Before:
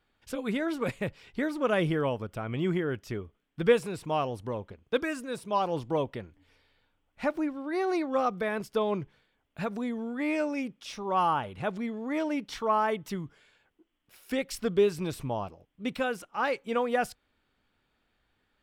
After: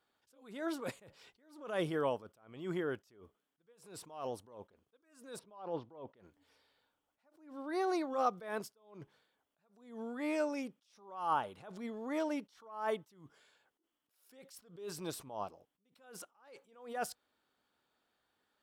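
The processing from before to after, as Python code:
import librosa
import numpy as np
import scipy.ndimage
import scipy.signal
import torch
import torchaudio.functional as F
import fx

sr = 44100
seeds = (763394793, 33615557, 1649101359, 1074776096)

y = fx.air_absorb(x, sr, metres=290.0, at=(5.39, 6.17))
y = fx.highpass(y, sr, hz=590.0, slope=6)
y = fx.peak_eq(y, sr, hz=2300.0, db=-9.0, octaves=1.1)
y = fx.attack_slew(y, sr, db_per_s=100.0)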